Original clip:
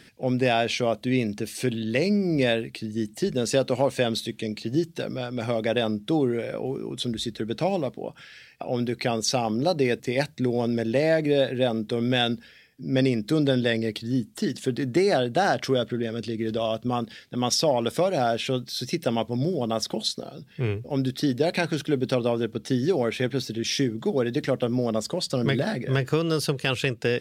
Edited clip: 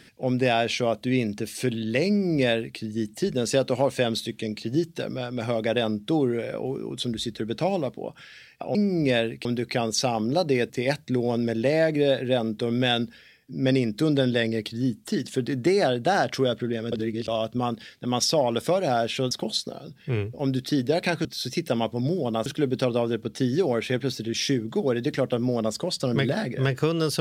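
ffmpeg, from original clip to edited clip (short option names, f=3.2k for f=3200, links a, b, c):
-filter_complex "[0:a]asplit=8[a][b][c][d][e][f][g][h];[a]atrim=end=8.752[i];[b]atrim=start=2.078:end=2.782[j];[c]atrim=start=8.748:end=16.222[k];[d]atrim=start=16.218:end=16.582,asetpts=PTS-STARTPTS,areverse[l];[e]atrim=start=16.578:end=18.612[m];[f]atrim=start=19.818:end=21.762[n];[g]atrim=start=18.608:end=19.822[o];[h]atrim=start=21.758[p];[i][j]acrossfade=d=0.004:c1=hsin:c2=hsin[q];[q][k]acrossfade=d=0.004:c1=hsin:c2=hsin[r];[r][l]acrossfade=d=0.004:c1=hsin:c2=hsin[s];[s][m]acrossfade=d=0.004:c1=hsin:c2=hsin[t];[t][n]acrossfade=d=0.004:c1=hsin:c2=hsin[u];[u][o]acrossfade=d=0.004:c1=hsin:c2=hsin[v];[v][p]acrossfade=d=0.004:c1=hsin:c2=hsin"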